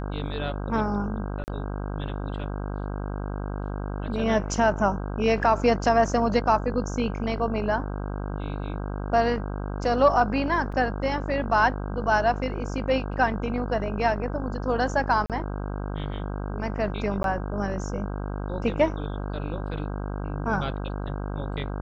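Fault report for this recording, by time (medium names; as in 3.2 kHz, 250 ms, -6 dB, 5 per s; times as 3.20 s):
buzz 50 Hz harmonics 32 -31 dBFS
1.44–1.48 s: dropout 39 ms
10.72 s: dropout 4.7 ms
15.26–15.30 s: dropout 37 ms
17.23–17.24 s: dropout 12 ms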